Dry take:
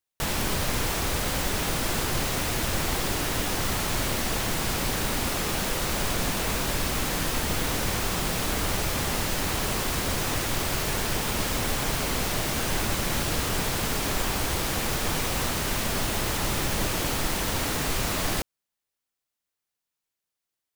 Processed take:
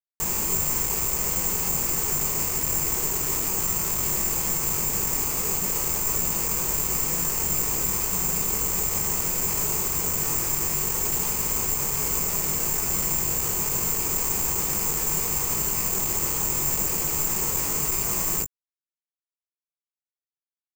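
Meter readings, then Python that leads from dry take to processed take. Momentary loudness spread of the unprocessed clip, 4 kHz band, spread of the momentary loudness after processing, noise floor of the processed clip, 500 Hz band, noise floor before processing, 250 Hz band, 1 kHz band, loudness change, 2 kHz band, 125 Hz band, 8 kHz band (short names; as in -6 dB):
0 LU, -6.5 dB, 1 LU, under -85 dBFS, -4.0 dB, under -85 dBFS, -4.5 dB, -4.0 dB, +4.0 dB, -6.5 dB, -4.0 dB, +7.5 dB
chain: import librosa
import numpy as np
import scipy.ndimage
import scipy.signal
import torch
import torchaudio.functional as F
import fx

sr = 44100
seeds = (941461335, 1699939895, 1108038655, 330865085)

y = fx.ripple_eq(x, sr, per_octave=0.77, db=8)
y = fx.quant_companded(y, sr, bits=2)
y = fx.air_absorb(y, sr, metres=390.0)
y = fx.doubler(y, sr, ms=21.0, db=-5.5)
y = (np.kron(y[::6], np.eye(6)[0]) * 6)[:len(y)]
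y = y * 10.0 ** (-5.0 / 20.0)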